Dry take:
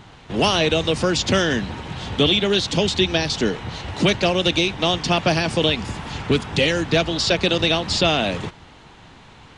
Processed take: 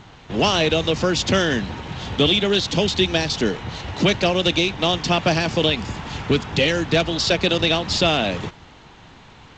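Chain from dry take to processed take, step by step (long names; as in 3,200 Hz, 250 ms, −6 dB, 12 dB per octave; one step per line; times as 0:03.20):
G.722 64 kbit/s 16,000 Hz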